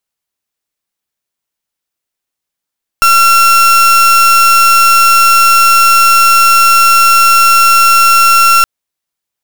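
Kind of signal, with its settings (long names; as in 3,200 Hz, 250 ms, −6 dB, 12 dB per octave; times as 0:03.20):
pulse wave 1,360 Hz, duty 36% −6 dBFS 5.62 s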